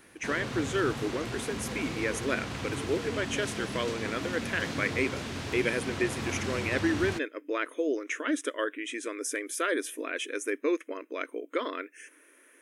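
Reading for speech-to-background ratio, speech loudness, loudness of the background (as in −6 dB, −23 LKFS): 3.5 dB, −32.0 LKFS, −35.5 LKFS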